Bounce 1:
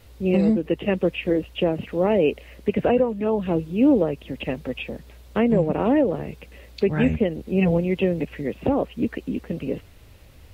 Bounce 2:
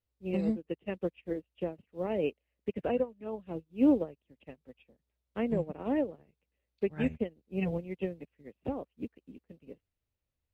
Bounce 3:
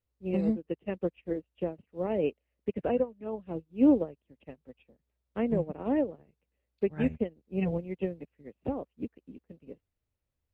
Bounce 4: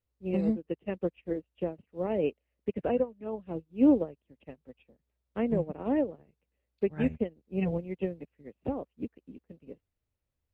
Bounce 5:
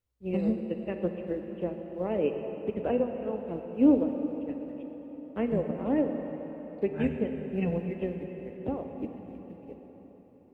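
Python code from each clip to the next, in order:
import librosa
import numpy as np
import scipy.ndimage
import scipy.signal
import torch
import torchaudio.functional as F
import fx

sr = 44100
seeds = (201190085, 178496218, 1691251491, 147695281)

y1 = fx.upward_expand(x, sr, threshold_db=-36.0, expansion=2.5)
y1 = y1 * librosa.db_to_amplitude(-6.0)
y2 = fx.high_shelf(y1, sr, hz=2400.0, db=-7.5)
y2 = y2 * librosa.db_to_amplitude(2.5)
y3 = y2
y4 = fx.rev_plate(y3, sr, seeds[0], rt60_s=4.7, hf_ratio=0.8, predelay_ms=0, drr_db=4.5)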